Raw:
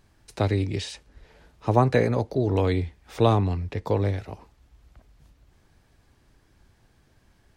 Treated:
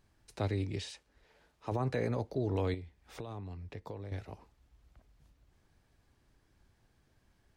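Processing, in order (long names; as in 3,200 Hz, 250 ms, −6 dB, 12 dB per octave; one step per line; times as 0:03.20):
0:00.91–0:01.72: low-shelf EQ 240 Hz −10 dB
brickwall limiter −14 dBFS, peak gain reduction 10 dB
0:02.74–0:04.12: downward compressor 4 to 1, threshold −33 dBFS, peak gain reduction 12 dB
level −9 dB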